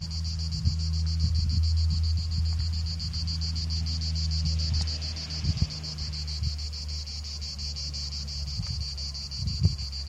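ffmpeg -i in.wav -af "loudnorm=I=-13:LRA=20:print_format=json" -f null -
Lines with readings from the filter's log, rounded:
"input_i" : "-30.2",
"input_tp" : "-10.5",
"input_lra" : "3.8",
"input_thresh" : "-40.2",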